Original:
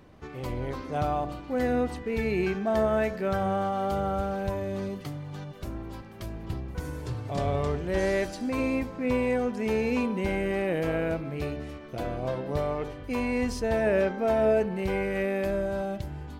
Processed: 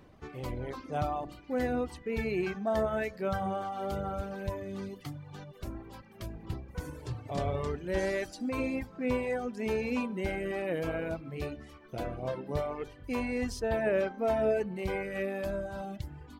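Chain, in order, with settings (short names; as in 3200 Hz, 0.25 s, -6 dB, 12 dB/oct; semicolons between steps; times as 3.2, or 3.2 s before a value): reverb removal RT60 1.1 s; gain -2.5 dB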